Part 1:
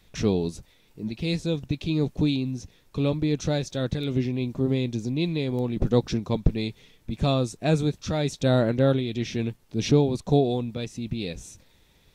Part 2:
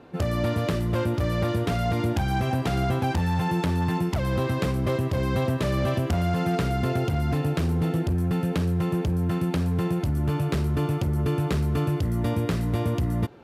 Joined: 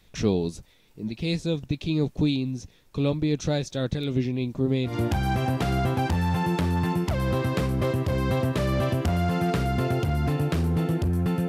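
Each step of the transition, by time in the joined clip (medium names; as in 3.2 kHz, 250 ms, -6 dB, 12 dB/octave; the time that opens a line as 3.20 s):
part 1
4.92 s: go over to part 2 from 1.97 s, crossfade 0.18 s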